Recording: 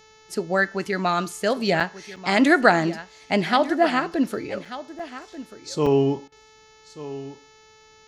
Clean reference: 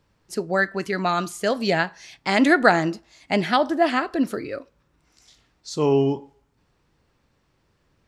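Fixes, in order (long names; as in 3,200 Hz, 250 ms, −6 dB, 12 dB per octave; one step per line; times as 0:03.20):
hum removal 436.3 Hz, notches 16
repair the gap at 0:01.80/0:02.16/0:04.65/0:04.99/0:05.86, 4.5 ms
repair the gap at 0:06.28, 39 ms
echo removal 1,188 ms −15 dB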